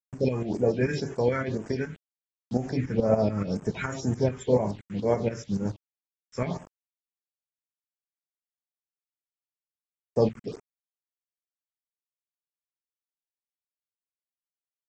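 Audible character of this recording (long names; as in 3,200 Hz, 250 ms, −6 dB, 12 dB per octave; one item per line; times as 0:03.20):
a quantiser's noise floor 8 bits, dither none
tremolo saw up 7 Hz, depth 70%
phaser sweep stages 4, 2 Hz, lowest notch 650–4,000 Hz
AAC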